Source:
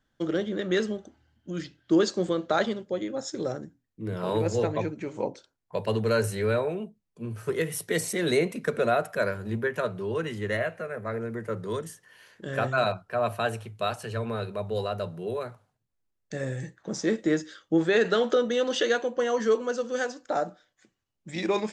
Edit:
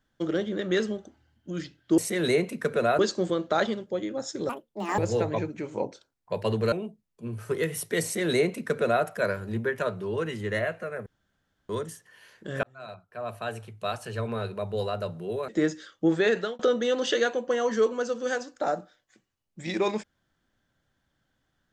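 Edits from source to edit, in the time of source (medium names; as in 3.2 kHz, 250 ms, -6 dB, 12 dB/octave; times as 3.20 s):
3.48–4.41 s: speed 189%
6.15–6.70 s: delete
8.01–9.02 s: copy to 1.98 s
11.04–11.67 s: room tone
12.61–14.20 s: fade in
15.46–17.17 s: delete
17.83–18.28 s: fade out equal-power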